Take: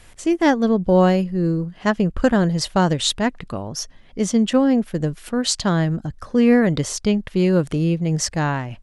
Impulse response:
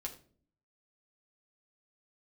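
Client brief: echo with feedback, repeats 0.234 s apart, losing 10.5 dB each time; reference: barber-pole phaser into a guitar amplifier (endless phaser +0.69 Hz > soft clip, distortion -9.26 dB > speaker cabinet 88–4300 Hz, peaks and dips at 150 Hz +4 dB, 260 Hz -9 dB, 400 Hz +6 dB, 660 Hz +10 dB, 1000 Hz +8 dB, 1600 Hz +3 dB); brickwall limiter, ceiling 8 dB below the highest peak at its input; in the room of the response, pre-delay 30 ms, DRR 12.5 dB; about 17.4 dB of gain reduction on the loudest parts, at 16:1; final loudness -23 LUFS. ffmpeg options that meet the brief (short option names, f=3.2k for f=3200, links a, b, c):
-filter_complex "[0:a]acompressor=threshold=-28dB:ratio=16,alimiter=level_in=2dB:limit=-24dB:level=0:latency=1,volume=-2dB,aecho=1:1:234|468|702:0.299|0.0896|0.0269,asplit=2[a][b];[1:a]atrim=start_sample=2205,adelay=30[c];[b][c]afir=irnorm=-1:irlink=0,volume=-11.5dB[d];[a][d]amix=inputs=2:normalize=0,asplit=2[e][f];[f]afreqshift=0.69[g];[e][g]amix=inputs=2:normalize=1,asoftclip=threshold=-38dB,highpass=88,equalizer=f=150:t=q:w=4:g=4,equalizer=f=260:t=q:w=4:g=-9,equalizer=f=400:t=q:w=4:g=6,equalizer=f=660:t=q:w=4:g=10,equalizer=f=1k:t=q:w=4:g=8,equalizer=f=1.6k:t=q:w=4:g=3,lowpass=f=4.3k:w=0.5412,lowpass=f=4.3k:w=1.3066,volume=18dB"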